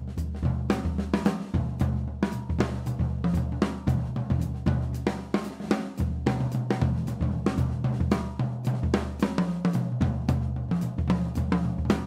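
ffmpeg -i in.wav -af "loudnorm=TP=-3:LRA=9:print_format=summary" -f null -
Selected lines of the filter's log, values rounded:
Input Integrated:    -27.8 LUFS
Input True Peak:     -11.3 dBTP
Input LRA:             1.1 LU
Input Threshold:     -37.8 LUFS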